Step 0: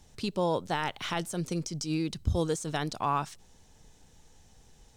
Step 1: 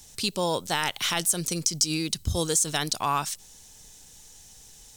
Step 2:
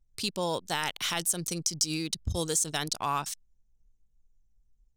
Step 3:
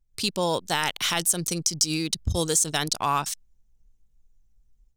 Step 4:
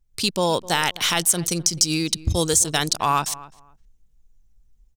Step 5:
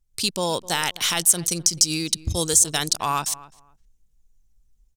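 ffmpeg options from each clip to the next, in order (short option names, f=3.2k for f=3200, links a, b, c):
-af "crystalizer=i=6:c=0"
-af "anlmdn=6.31,volume=-4dB"
-af "dynaudnorm=f=100:g=3:m=7dB,volume=-1.5dB"
-filter_complex "[0:a]asplit=2[a][b];[b]adelay=258,lowpass=f=1.6k:p=1,volume=-18dB,asplit=2[c][d];[d]adelay=258,lowpass=f=1.6k:p=1,volume=0.21[e];[a][c][e]amix=inputs=3:normalize=0,volume=4dB"
-af "equalizer=f=10k:t=o:w=2.1:g=6.5,volume=-4dB"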